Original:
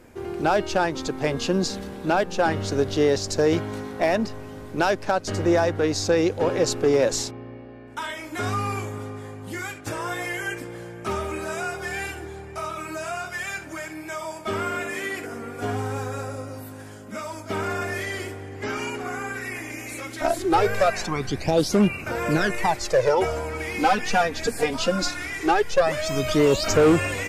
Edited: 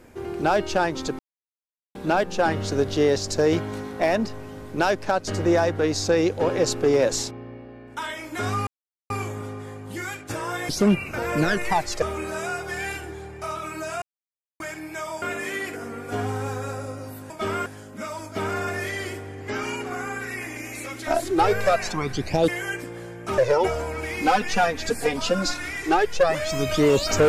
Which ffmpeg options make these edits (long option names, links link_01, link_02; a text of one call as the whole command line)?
ffmpeg -i in.wav -filter_complex "[0:a]asplit=13[link_01][link_02][link_03][link_04][link_05][link_06][link_07][link_08][link_09][link_10][link_11][link_12][link_13];[link_01]atrim=end=1.19,asetpts=PTS-STARTPTS,afade=type=out:start_time=1.186:duration=0.004:curve=hsin[link_14];[link_02]atrim=start=1.19:end=1.95,asetpts=PTS-STARTPTS,volume=0[link_15];[link_03]atrim=start=1.95:end=8.67,asetpts=PTS-STARTPTS,afade=type=in:duration=0.004:curve=hsin,afade=type=out:start_time=6.716:duration=0.004:curve=hsin,apad=pad_dur=0.43[link_16];[link_04]atrim=start=8.67:end=10.262,asetpts=PTS-STARTPTS,afade=type=in:duration=0.004:curve=hsin[link_17];[link_05]atrim=start=21.618:end=22.952[link_18];[link_06]atrim=start=11.158:end=13.16,asetpts=PTS-STARTPTS,afade=type=out:start_time=1.998:duration=0.004:curve=hsin[link_19];[link_07]atrim=start=13.16:end=13.74,asetpts=PTS-STARTPTS,volume=0[link_20];[link_08]atrim=start=13.74:end=14.362,asetpts=PTS-STARTPTS,afade=type=in:duration=0.004:curve=hsin[link_21];[link_09]atrim=start=14.718:end=16.802[link_22];[link_10]atrim=start=14.358:end=14.722[link_23];[link_11]atrim=start=16.798:end=21.622[link_24];[link_12]atrim=start=10.258:end=11.162[link_25];[link_13]atrim=start=22.948[link_26];[link_14][link_15][link_16][link_17]concat=n=4:v=0:a=1[link_27];[link_27][link_18]acrossfade=duration=0.004:curve1=hsin:curve2=hsin[link_28];[link_19][link_20][link_21]concat=n=3:v=0:a=1[link_29];[link_28][link_29]acrossfade=duration=0.004:curve1=hsin:curve2=hsin[link_30];[link_30][link_22]acrossfade=duration=0.004:curve1=hsin:curve2=hsin[link_31];[link_31][link_23]acrossfade=duration=0.004:curve1=hsin:curve2=hsin[link_32];[link_32][link_24]acrossfade=duration=0.004:curve1=hsin:curve2=hsin[link_33];[link_33][link_25]acrossfade=duration=0.004:curve1=hsin:curve2=hsin[link_34];[link_34][link_26]acrossfade=duration=0.004:curve1=hsin:curve2=hsin" out.wav